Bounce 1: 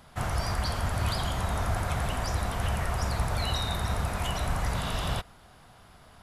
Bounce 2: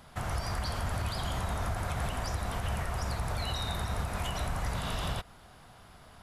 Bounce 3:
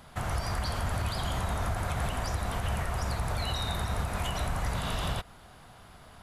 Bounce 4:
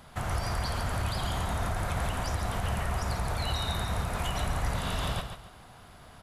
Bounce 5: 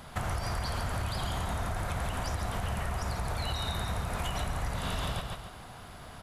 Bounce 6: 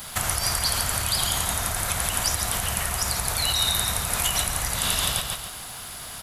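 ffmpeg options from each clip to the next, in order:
-af "alimiter=limit=0.0668:level=0:latency=1:release=207"
-af "equalizer=f=5300:w=5.9:g=-2.5,volume=1.26"
-af "aecho=1:1:140|280|420:0.398|0.107|0.029"
-af "acompressor=threshold=0.02:ratio=6,volume=1.68"
-af "crystalizer=i=8.5:c=0,volume=1.12"

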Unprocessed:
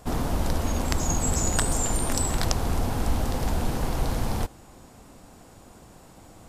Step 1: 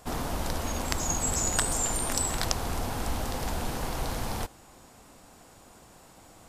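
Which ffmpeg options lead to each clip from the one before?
-af "lowshelf=f=500:g=-7.5"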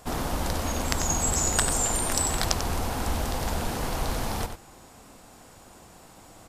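-filter_complex "[0:a]asplit=2[s0][s1];[s1]adelay=93.29,volume=0.398,highshelf=f=4000:g=-2.1[s2];[s0][s2]amix=inputs=2:normalize=0,volume=1.33"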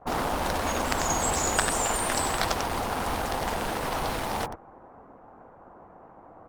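-filter_complex "[0:a]acrossover=split=1400[s0][s1];[s1]acrusher=bits=5:mix=0:aa=0.000001[s2];[s0][s2]amix=inputs=2:normalize=0,asplit=2[s3][s4];[s4]highpass=f=720:p=1,volume=4.47,asoftclip=type=tanh:threshold=0.944[s5];[s3][s5]amix=inputs=2:normalize=0,lowpass=f=2500:p=1,volume=0.501" -ar 48000 -c:a libopus -b:a 24k

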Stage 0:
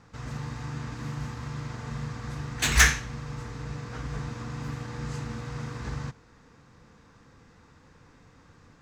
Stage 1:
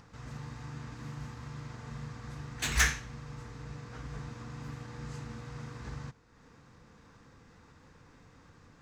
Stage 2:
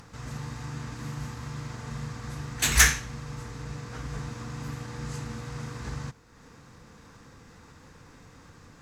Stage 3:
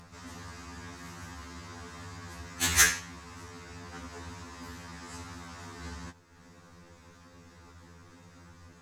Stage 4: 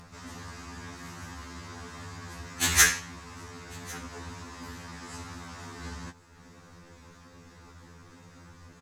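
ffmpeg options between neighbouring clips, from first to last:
-af "acompressor=mode=upward:threshold=0.00794:ratio=2.5,volume=0.422"
-af "equalizer=f=12000:w=0.58:g=9,volume=2"
-af "afftfilt=real='re*2*eq(mod(b,4),0)':imag='im*2*eq(mod(b,4),0)':win_size=2048:overlap=0.75"
-af "aecho=1:1:1099:0.0668,volume=1.26"

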